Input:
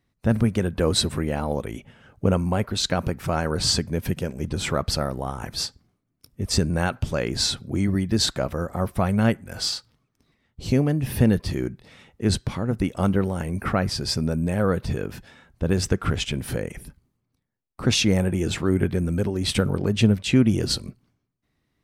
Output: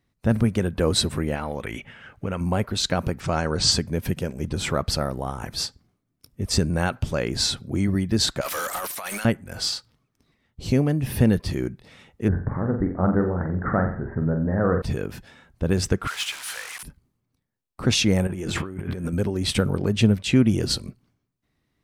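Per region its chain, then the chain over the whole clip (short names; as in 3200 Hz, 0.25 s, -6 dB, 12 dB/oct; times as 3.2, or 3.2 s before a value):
1.35–2.41 bell 2000 Hz +11.5 dB 1.7 oct + compressor 3:1, threshold -26 dBFS
3.2–3.71 LPF 7500 Hz 24 dB/oct + high shelf 4700 Hz +7 dB
8.41–9.25 differentiator + negative-ratio compressor -49 dBFS, ratio -0.5 + overdrive pedal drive 36 dB, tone 6300 Hz, clips at -18.5 dBFS
12.28–14.82 steep low-pass 1900 Hz 96 dB/oct + flutter echo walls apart 7.6 m, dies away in 0.46 s
16.07–16.83 delta modulation 64 kbps, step -33.5 dBFS + HPF 1000 Hz 24 dB/oct + power-law curve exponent 0.7
18.27–19.13 bell 1100 Hz +4 dB 0.86 oct + de-hum 85.8 Hz, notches 40 + negative-ratio compressor -30 dBFS
whole clip: dry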